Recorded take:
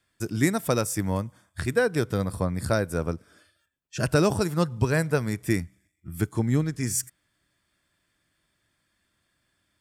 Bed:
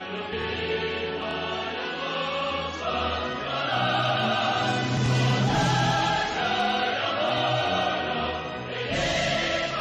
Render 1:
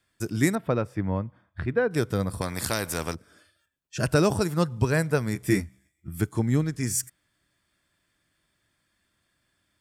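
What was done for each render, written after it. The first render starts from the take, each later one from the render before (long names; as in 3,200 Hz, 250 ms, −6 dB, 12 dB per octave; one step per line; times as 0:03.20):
0:00.55–0:01.91: high-frequency loss of the air 420 metres
0:02.41–0:03.15: every bin compressed towards the loudest bin 2 to 1
0:05.34–0:06.09: double-tracking delay 15 ms −3.5 dB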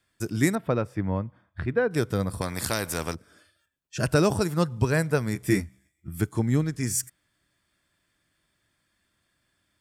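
no processing that can be heard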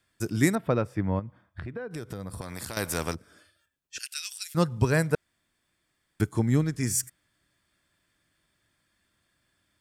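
0:01.19–0:02.77: downward compressor, threshold −33 dBFS
0:03.98–0:04.55: inverse Chebyshev high-pass filter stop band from 420 Hz, stop band 80 dB
0:05.15–0:06.20: fill with room tone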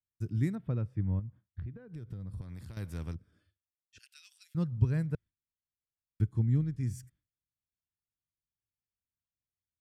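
noise gate with hold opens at −48 dBFS
drawn EQ curve 110 Hz 0 dB, 670 Hz −21 dB, 3,300 Hz −18 dB, 7,400 Hz −26 dB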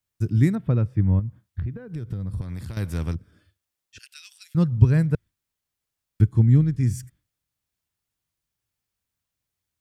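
level +11.5 dB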